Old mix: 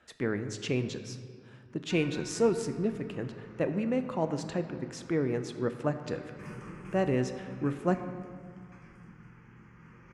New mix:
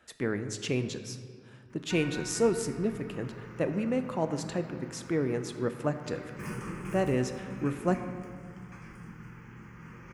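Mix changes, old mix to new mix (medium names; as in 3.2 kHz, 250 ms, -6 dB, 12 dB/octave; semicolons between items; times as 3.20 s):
background +6.0 dB; master: remove distance through air 54 m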